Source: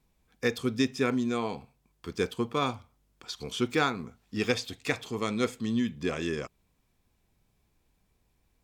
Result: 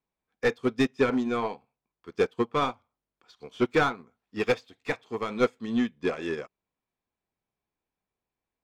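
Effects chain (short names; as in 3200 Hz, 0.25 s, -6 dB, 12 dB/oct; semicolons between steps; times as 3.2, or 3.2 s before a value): overdrive pedal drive 21 dB, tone 1200 Hz, clips at -11 dBFS; upward expander 2.5:1, over -35 dBFS; gain +2 dB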